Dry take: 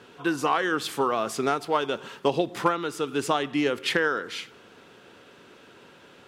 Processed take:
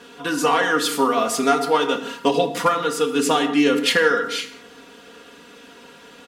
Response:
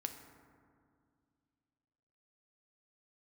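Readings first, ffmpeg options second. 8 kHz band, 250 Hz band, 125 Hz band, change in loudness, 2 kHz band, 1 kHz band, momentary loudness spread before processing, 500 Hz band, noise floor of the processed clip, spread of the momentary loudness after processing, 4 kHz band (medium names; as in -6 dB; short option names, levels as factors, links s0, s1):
+11.0 dB, +7.5 dB, +2.0 dB, +7.0 dB, +6.5 dB, +6.0 dB, 6 LU, +6.5 dB, -46 dBFS, 6 LU, +8.5 dB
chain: -filter_complex "[0:a]highshelf=f=3600:g=7,aecho=1:1:4.2:0.88[s0];[1:a]atrim=start_sample=2205,afade=t=out:st=0.25:d=0.01,atrim=end_sample=11466[s1];[s0][s1]afir=irnorm=-1:irlink=0,volume=1.68"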